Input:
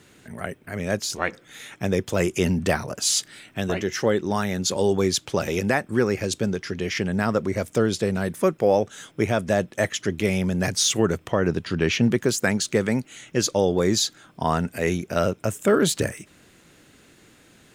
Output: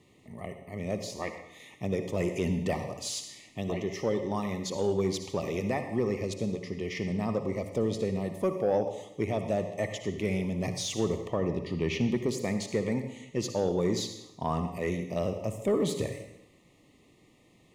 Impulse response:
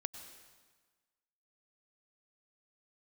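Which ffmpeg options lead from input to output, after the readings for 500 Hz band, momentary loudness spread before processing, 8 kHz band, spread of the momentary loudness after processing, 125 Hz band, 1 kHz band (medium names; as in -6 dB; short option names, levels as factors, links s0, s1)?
-7.0 dB, 8 LU, -13.5 dB, 9 LU, -6.5 dB, -8.5 dB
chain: -filter_complex "[0:a]asuperstop=centerf=1500:order=12:qfactor=2.7[s0];[1:a]atrim=start_sample=2205,asetrate=74970,aresample=44100[s1];[s0][s1]afir=irnorm=-1:irlink=0,asoftclip=type=tanh:threshold=0.158,highshelf=f=3600:g=-9"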